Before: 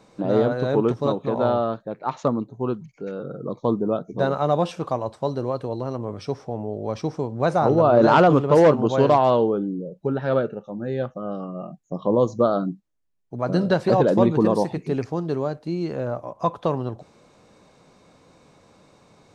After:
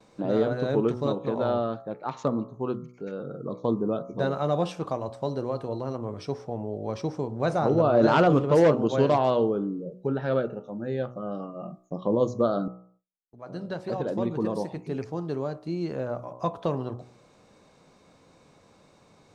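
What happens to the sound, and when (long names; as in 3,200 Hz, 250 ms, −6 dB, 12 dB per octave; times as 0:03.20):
0:12.68–0:16.04: fade in
whole clip: hum removal 61.51 Hz, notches 23; noise gate with hold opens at −50 dBFS; dynamic equaliser 910 Hz, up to −4 dB, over −30 dBFS, Q 1.5; level −3 dB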